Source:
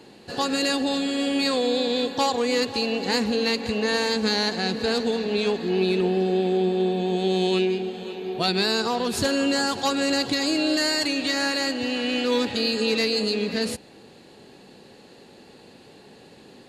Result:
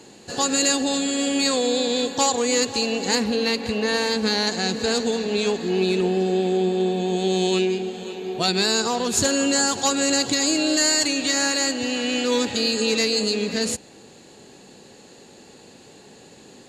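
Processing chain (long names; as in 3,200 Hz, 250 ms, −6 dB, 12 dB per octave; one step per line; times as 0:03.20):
parametric band 7,000 Hz +15 dB 0.44 octaves, from 0:03.15 +2.5 dB, from 0:04.47 +13.5 dB
level +1 dB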